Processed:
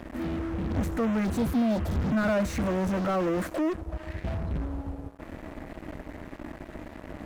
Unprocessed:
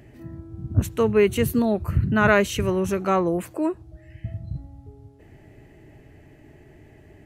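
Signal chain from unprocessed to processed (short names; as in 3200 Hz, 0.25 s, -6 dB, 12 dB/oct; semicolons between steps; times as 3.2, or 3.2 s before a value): high shelf 2300 Hz -9 dB; fixed phaser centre 610 Hz, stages 8; in parallel at -7.5 dB: fuzz box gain 48 dB, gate -54 dBFS; on the sum: spectral repair 1.27–1.95, 970–3200 Hz after; slew limiter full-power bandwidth 150 Hz; gain -8 dB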